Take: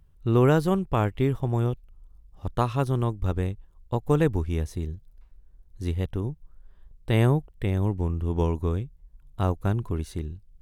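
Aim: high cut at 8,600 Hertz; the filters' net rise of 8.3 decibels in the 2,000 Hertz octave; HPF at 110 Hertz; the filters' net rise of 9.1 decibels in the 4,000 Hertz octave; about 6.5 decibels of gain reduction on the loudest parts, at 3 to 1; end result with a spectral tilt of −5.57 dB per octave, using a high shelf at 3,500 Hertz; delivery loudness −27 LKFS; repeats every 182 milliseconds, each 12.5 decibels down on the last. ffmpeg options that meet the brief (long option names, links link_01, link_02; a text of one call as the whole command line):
ffmpeg -i in.wav -af "highpass=110,lowpass=8600,equalizer=frequency=2000:width_type=o:gain=8,highshelf=frequency=3500:gain=5,equalizer=frequency=4000:width_type=o:gain=5.5,acompressor=threshold=-24dB:ratio=3,aecho=1:1:182|364|546:0.237|0.0569|0.0137,volume=3.5dB" out.wav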